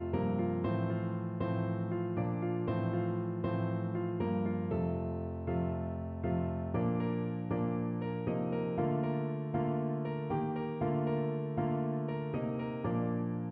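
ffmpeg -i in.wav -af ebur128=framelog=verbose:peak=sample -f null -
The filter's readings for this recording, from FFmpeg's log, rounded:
Integrated loudness:
  I:         -34.8 LUFS
  Threshold: -44.8 LUFS
Loudness range:
  LRA:         0.9 LU
  Threshold: -54.8 LUFS
  LRA low:   -35.3 LUFS
  LRA high:  -34.4 LUFS
Sample peak:
  Peak:      -20.9 dBFS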